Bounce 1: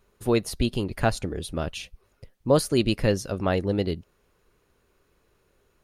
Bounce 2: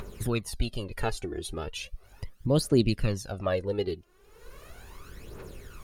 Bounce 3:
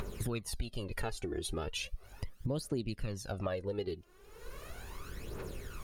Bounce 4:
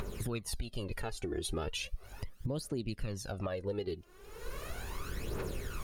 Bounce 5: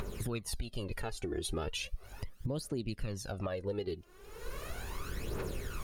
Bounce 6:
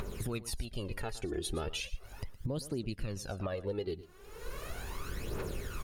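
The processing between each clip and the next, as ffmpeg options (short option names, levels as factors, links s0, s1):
-af "acompressor=mode=upward:threshold=0.0708:ratio=2.5,aphaser=in_gain=1:out_gain=1:delay=2.9:decay=0.66:speed=0.37:type=triangular,volume=0.447"
-af "acompressor=threshold=0.02:ratio=6,volume=1.12"
-af "alimiter=level_in=2.24:limit=0.0631:level=0:latency=1:release=484,volume=0.447,volume=1.78"
-af anull
-af "aecho=1:1:116:0.15"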